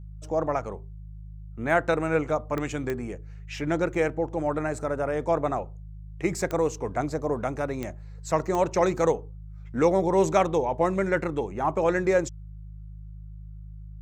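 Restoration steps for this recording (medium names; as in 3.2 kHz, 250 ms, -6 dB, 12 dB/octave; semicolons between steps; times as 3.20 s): de-click; de-hum 52.1 Hz, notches 3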